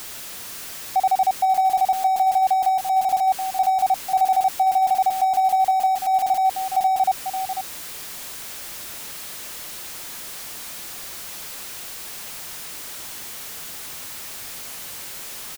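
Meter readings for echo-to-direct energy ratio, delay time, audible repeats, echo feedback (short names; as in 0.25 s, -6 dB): -9.5 dB, 0.494 s, 1, no steady repeat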